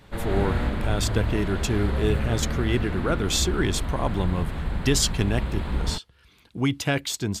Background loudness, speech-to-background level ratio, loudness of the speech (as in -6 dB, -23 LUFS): -29.5 LUFS, 3.0 dB, -26.5 LUFS